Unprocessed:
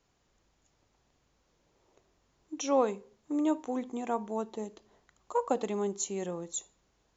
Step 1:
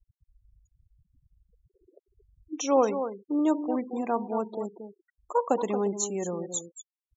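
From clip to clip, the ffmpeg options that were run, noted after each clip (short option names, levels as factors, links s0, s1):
-filter_complex "[0:a]asplit=2[s0][s1];[s1]adelay=227.4,volume=0.355,highshelf=f=4000:g=-5.12[s2];[s0][s2]amix=inputs=2:normalize=0,acompressor=mode=upward:threshold=0.00501:ratio=2.5,afftfilt=real='re*gte(hypot(re,im),0.00794)':imag='im*gte(hypot(re,im),0.00794)':win_size=1024:overlap=0.75,volume=1.58"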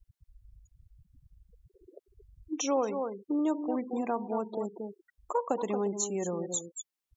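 -af "acompressor=threshold=0.01:ratio=2,volume=1.88"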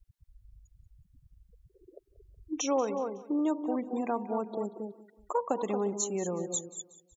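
-af "aecho=1:1:185|370|555:0.126|0.0529|0.0222"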